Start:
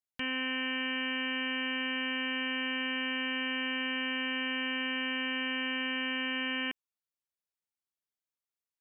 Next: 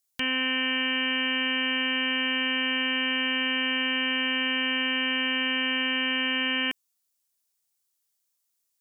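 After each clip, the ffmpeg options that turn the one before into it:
-af "bass=f=250:g=-1,treble=f=4k:g=13,volume=5.5dB"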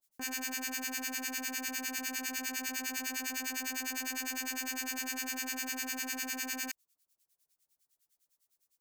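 -filter_complex "[0:a]aeval=exprs='0.0237*(abs(mod(val(0)/0.0237+3,4)-2)-1)':c=same,acrossover=split=1200[a][b];[a]aeval=exprs='val(0)*(1-1/2+1/2*cos(2*PI*9.9*n/s))':c=same[c];[b]aeval=exprs='val(0)*(1-1/2-1/2*cos(2*PI*9.9*n/s))':c=same[d];[c][d]amix=inputs=2:normalize=0,volume=4.5dB"

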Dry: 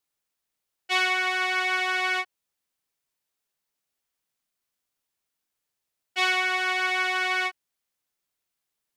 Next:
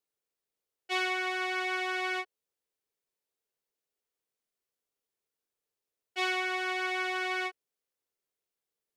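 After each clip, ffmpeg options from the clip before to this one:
-af "equalizer=f=440:w=1.9:g=12,volume=-8dB"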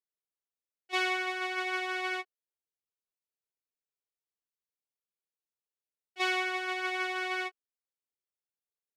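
-af "agate=range=-14dB:threshold=-31dB:ratio=16:detection=peak,volume=1dB"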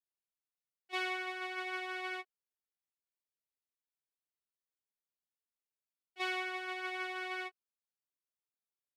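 -af "equalizer=f=6.4k:t=o:w=0.67:g=-4,volume=-6.5dB"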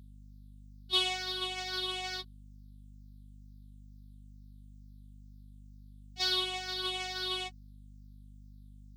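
-af "afftfilt=real='re*pow(10,11/40*sin(2*PI*(0.62*log(max(b,1)*sr/1024/100)/log(2)-(-2.2)*(pts-256)/sr)))':imag='im*pow(10,11/40*sin(2*PI*(0.62*log(max(b,1)*sr/1024/100)/log(2)-(-2.2)*(pts-256)/sr)))':win_size=1024:overlap=0.75,highshelf=f=2.8k:t=q:w=3:g=10,aeval=exprs='val(0)+0.00282*(sin(2*PI*50*n/s)+sin(2*PI*2*50*n/s)/2+sin(2*PI*3*50*n/s)/3+sin(2*PI*4*50*n/s)/4+sin(2*PI*5*50*n/s)/5)':c=same"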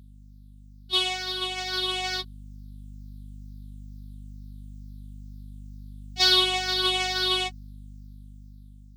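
-af "dynaudnorm=f=780:g=5:m=7.5dB,volume=3.5dB"

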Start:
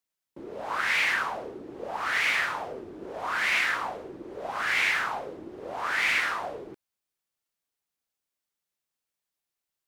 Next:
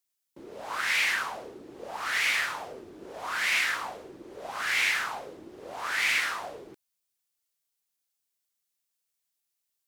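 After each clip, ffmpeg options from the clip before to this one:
-af "highshelf=f=3k:g=11.5,volume=-5dB"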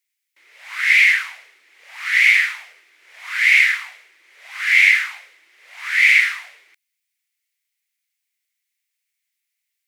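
-af "highpass=f=2.1k:t=q:w=5.4,volume=2dB"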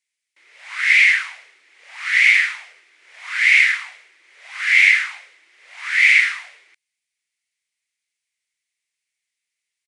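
-af "aresample=22050,aresample=44100"

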